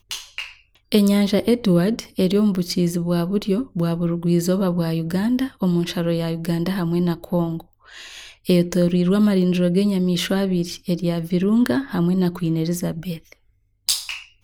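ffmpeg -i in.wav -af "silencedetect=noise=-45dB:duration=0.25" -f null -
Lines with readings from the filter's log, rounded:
silence_start: 13.33
silence_end: 13.88 | silence_duration: 0.55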